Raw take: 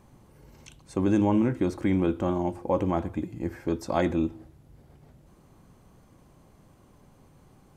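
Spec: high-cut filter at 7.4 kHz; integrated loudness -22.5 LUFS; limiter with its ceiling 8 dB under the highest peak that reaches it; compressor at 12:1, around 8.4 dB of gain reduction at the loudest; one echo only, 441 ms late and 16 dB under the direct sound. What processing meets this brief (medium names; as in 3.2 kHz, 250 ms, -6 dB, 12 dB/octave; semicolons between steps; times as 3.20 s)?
low-pass 7.4 kHz; compression 12:1, threshold -27 dBFS; peak limiter -24 dBFS; delay 441 ms -16 dB; trim +13 dB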